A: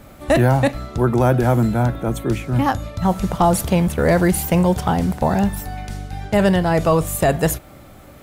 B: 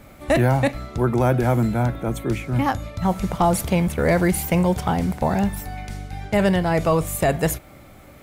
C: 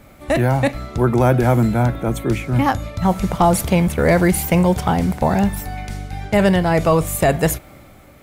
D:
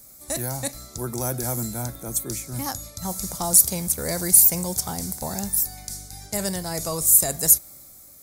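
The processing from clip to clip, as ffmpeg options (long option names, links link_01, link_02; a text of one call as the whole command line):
ffmpeg -i in.wav -af "equalizer=frequency=2200:width_type=o:width=0.22:gain=6.5,volume=-3dB" out.wav
ffmpeg -i in.wav -af "dynaudnorm=framelen=180:gausssize=7:maxgain=4.5dB" out.wav
ffmpeg -i in.wav -af "aexciter=amount=14.3:drive=5.8:freq=4400,volume=-14.5dB" out.wav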